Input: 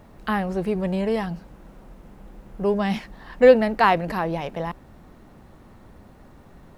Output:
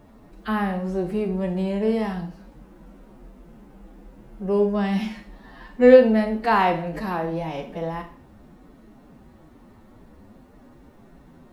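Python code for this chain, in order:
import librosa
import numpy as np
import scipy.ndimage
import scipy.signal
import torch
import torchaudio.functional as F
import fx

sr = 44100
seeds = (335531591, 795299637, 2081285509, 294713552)

y = fx.peak_eq(x, sr, hz=280.0, db=5.5, octaves=1.2)
y = fx.stretch_vocoder(y, sr, factor=1.7)
y = fx.rev_schroeder(y, sr, rt60_s=0.46, comb_ms=25, drr_db=6.0)
y = y * librosa.db_to_amplitude(-3.5)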